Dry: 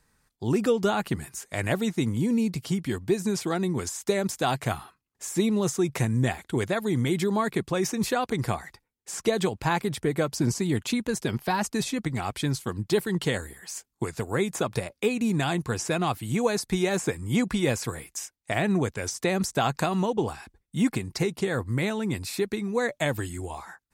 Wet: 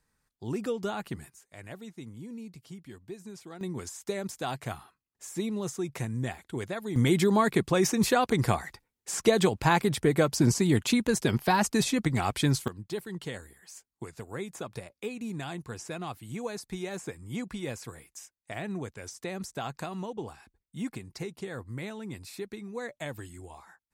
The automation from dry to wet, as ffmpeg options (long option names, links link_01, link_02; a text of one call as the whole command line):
ffmpeg -i in.wav -af "asetnsamples=nb_out_samples=441:pad=0,asendcmd='1.3 volume volume -17.5dB;3.61 volume volume -8dB;6.96 volume volume 2dB;12.68 volume volume -11dB',volume=-8.5dB" out.wav